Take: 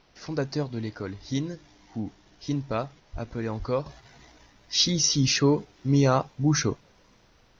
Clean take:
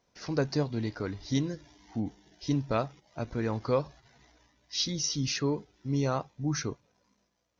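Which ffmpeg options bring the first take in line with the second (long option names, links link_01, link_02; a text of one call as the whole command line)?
ffmpeg -i in.wav -filter_complex "[0:a]asplit=3[link_01][link_02][link_03];[link_01]afade=type=out:start_time=3.12:duration=0.02[link_04];[link_02]highpass=frequency=140:width=0.5412,highpass=frequency=140:width=1.3066,afade=type=in:start_time=3.12:duration=0.02,afade=type=out:start_time=3.24:duration=0.02[link_05];[link_03]afade=type=in:start_time=3.24:duration=0.02[link_06];[link_04][link_05][link_06]amix=inputs=3:normalize=0,asplit=3[link_07][link_08][link_09];[link_07]afade=type=out:start_time=3.58:duration=0.02[link_10];[link_08]highpass=frequency=140:width=0.5412,highpass=frequency=140:width=1.3066,afade=type=in:start_time=3.58:duration=0.02,afade=type=out:start_time=3.7:duration=0.02[link_11];[link_09]afade=type=in:start_time=3.7:duration=0.02[link_12];[link_10][link_11][link_12]amix=inputs=3:normalize=0,agate=range=-21dB:threshold=-51dB,asetnsamples=nb_out_samples=441:pad=0,asendcmd='3.86 volume volume -8dB',volume=0dB" out.wav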